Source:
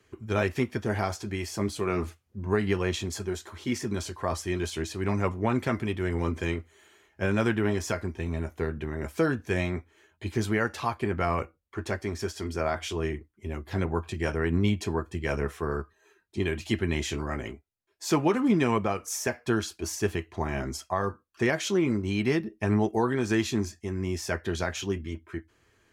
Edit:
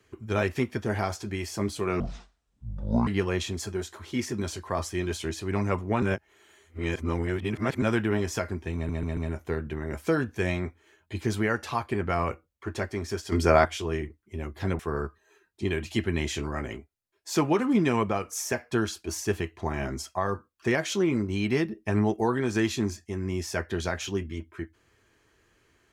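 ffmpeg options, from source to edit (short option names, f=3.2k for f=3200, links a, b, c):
-filter_complex "[0:a]asplit=11[a][b][c][d][e][f][g][h][i][j][k];[a]atrim=end=2.004[l];[b]atrim=start=2:end=2.6,asetpts=PTS-STARTPTS,asetrate=24696,aresample=44100[m];[c]atrim=start=2.596:end=5.552[n];[d]atrim=start=5.548:end=7.352,asetpts=PTS-STARTPTS,areverse[o];[e]atrim=start=7.348:end=8.422[p];[f]atrim=start=8.278:end=8.422[q];[g]atrim=start=8.278:end=8.422[r];[h]atrim=start=8.278:end=12.432[s];[i]atrim=start=12.428:end=12.762,asetpts=PTS-STARTPTS,volume=9dB[t];[j]atrim=start=12.758:end=13.902[u];[k]atrim=start=15.538[v];[l][m]acrossfade=d=0.004:c1=hsin:c2=hsin[w];[w][n]acrossfade=d=0.004:c1=hsin:c2=hsin[x];[x][o]acrossfade=d=0.004:c1=hsin:c2=hsin[y];[y][p]acrossfade=d=0.004:c1=hsin:c2=hsin[z];[z][q]acrossfade=d=0.004:c1=hsin:c2=hsin[aa];[aa][r]acrossfade=d=0.004:c1=hsin:c2=hsin[ab];[ab][s]acrossfade=d=0.004:c1=hsin:c2=hsin[ac];[ac][t]acrossfade=d=0.004:c1=hsin:c2=hsin[ad];[ad][u]acrossfade=d=0.004:c1=hsin:c2=hsin[ae];[ae][v]acrossfade=d=0.004:c1=hsin:c2=hsin"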